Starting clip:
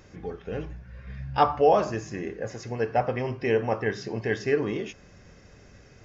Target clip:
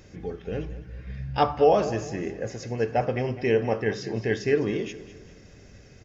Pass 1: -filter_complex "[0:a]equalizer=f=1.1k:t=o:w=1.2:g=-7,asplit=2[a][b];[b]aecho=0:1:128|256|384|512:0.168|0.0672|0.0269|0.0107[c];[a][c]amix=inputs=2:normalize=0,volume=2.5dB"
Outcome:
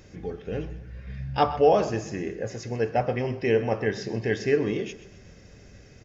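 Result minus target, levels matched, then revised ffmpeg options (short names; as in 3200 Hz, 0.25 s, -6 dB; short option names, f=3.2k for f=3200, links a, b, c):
echo 77 ms early
-filter_complex "[0:a]equalizer=f=1.1k:t=o:w=1.2:g=-7,asplit=2[a][b];[b]aecho=0:1:205|410|615|820:0.168|0.0672|0.0269|0.0107[c];[a][c]amix=inputs=2:normalize=0,volume=2.5dB"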